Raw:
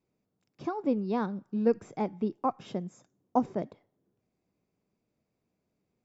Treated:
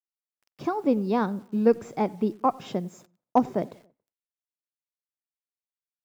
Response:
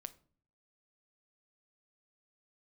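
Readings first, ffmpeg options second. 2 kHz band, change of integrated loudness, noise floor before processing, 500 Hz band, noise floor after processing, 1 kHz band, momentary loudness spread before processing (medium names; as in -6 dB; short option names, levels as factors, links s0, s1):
+6.5 dB, +5.5 dB, -82 dBFS, +5.5 dB, under -85 dBFS, +6.0 dB, 10 LU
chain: -filter_complex "[0:a]lowshelf=f=310:g=-3,acontrast=70,acrusher=bits=9:mix=0:aa=0.000001,asoftclip=type=hard:threshold=0.355,asplit=2[s0][s1];[s1]adelay=93,lowpass=f=2000:p=1,volume=0.0668,asplit=2[s2][s3];[s3]adelay=93,lowpass=f=2000:p=1,volume=0.51,asplit=2[s4][s5];[s5]adelay=93,lowpass=f=2000:p=1,volume=0.51[s6];[s0][s2][s4][s6]amix=inputs=4:normalize=0"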